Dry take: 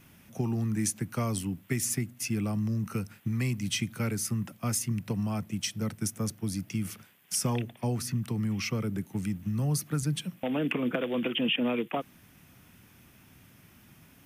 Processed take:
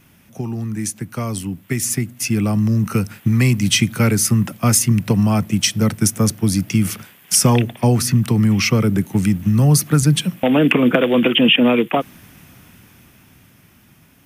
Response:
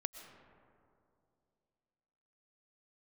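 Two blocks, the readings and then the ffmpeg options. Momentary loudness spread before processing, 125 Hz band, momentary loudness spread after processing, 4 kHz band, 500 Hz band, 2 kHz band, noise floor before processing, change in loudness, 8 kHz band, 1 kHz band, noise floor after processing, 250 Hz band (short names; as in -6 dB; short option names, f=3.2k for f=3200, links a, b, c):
5 LU, +14.5 dB, 11 LU, +15.0 dB, +14.5 dB, +14.5 dB, -58 dBFS, +14.5 dB, +14.0 dB, +14.0 dB, -51 dBFS, +14.5 dB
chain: -af "dynaudnorm=f=410:g=11:m=11dB,volume=4.5dB"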